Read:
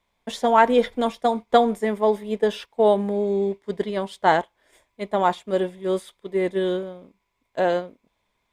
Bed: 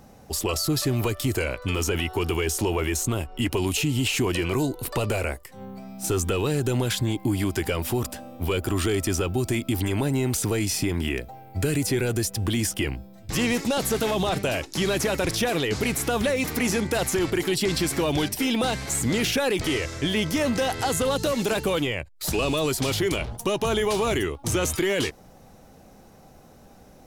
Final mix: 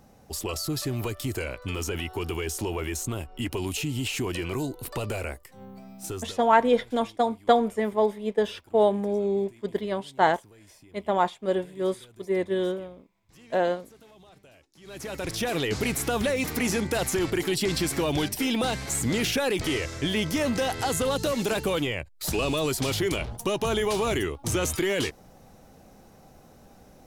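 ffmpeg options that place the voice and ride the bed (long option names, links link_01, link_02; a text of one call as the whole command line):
ffmpeg -i stem1.wav -i stem2.wav -filter_complex "[0:a]adelay=5950,volume=-3dB[link_01];[1:a]volume=21.5dB,afade=type=out:start_time=5.93:duration=0.47:silence=0.0668344,afade=type=in:start_time=14.82:duration=0.81:silence=0.0446684[link_02];[link_01][link_02]amix=inputs=2:normalize=0" out.wav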